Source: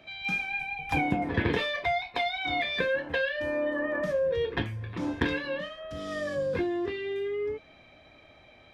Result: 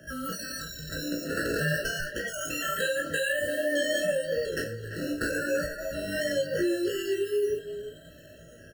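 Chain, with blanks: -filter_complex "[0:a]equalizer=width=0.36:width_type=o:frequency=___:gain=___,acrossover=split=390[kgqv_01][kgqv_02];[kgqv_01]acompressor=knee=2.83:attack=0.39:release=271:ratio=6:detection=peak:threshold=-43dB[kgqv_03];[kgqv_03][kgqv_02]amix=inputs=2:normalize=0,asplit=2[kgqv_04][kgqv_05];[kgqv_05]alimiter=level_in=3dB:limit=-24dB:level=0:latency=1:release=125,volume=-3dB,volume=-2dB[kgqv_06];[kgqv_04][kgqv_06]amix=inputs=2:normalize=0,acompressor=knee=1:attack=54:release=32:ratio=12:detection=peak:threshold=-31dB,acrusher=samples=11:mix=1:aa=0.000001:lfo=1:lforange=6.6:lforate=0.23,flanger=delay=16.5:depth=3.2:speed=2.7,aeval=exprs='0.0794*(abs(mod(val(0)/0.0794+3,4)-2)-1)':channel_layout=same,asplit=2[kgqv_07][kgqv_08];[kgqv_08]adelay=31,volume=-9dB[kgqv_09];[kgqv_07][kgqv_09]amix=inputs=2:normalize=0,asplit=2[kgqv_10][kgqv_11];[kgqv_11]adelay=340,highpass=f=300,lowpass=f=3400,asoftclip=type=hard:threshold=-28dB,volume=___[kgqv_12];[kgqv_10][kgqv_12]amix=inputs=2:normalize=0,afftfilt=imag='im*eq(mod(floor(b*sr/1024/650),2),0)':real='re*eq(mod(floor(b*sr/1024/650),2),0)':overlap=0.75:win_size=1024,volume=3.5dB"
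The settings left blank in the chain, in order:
160, 9, -9dB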